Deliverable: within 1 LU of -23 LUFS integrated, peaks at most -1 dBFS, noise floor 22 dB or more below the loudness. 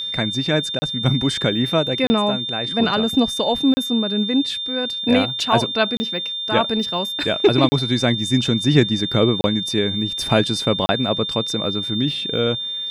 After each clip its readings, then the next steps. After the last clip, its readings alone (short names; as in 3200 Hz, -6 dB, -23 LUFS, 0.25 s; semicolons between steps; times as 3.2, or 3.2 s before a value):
dropouts 7; longest dropout 30 ms; steady tone 3600 Hz; tone level -24 dBFS; loudness -19.5 LUFS; peak -1.5 dBFS; loudness target -23.0 LUFS
-> interpolate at 0.79/2.07/3.74/5.97/7.69/9.41/10.86, 30 ms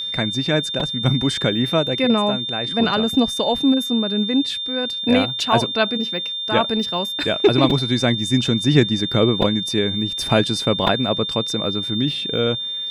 dropouts 0; steady tone 3600 Hz; tone level -24 dBFS
-> notch 3600 Hz, Q 30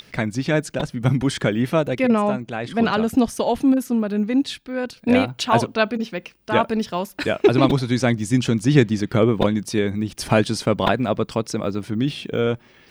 steady tone none; loudness -21.0 LUFS; peak -2.5 dBFS; loudness target -23.0 LUFS
-> gain -2 dB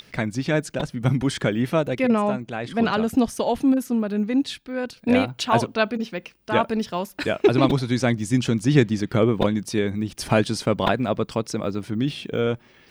loudness -23.0 LUFS; peak -4.5 dBFS; noise floor -54 dBFS